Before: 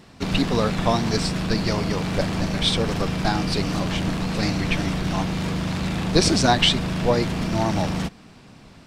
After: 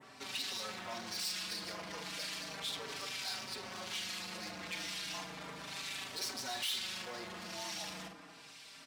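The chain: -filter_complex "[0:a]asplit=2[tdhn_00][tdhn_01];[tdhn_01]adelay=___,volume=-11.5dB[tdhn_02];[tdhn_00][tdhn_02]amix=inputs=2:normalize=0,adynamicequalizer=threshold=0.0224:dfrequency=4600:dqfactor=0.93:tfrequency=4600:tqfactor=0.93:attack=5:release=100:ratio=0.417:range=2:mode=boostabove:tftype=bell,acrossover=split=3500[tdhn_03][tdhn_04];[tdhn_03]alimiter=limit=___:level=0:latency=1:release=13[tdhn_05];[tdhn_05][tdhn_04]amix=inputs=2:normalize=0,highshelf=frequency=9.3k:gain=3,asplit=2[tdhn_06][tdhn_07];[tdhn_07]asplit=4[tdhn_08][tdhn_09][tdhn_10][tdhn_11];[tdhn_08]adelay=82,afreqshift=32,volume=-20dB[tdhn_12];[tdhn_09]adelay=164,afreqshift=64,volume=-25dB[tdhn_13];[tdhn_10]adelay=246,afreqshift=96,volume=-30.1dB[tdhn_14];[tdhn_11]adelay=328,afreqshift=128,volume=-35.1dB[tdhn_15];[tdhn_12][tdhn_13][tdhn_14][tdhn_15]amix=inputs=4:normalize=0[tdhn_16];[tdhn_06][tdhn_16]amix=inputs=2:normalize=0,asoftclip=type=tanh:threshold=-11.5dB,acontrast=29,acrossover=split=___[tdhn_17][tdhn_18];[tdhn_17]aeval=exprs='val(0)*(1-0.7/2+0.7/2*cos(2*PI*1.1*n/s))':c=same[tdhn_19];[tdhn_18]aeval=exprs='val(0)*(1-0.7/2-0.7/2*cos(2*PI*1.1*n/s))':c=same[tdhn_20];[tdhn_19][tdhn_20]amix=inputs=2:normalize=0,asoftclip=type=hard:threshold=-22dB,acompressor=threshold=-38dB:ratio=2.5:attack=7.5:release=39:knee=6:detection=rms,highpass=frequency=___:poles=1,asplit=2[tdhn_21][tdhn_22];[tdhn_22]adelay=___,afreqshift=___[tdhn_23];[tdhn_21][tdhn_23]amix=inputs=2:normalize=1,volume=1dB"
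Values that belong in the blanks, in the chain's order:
47, -15.5dB, 1900, 1.3k, 4.7, -0.33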